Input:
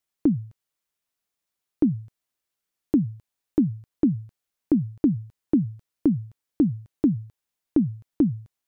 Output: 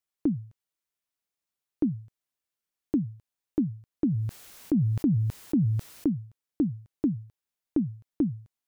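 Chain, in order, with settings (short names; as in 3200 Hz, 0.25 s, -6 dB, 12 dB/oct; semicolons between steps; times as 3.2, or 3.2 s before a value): 4.06–6.08 sustainer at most 23 dB/s; gain -5.5 dB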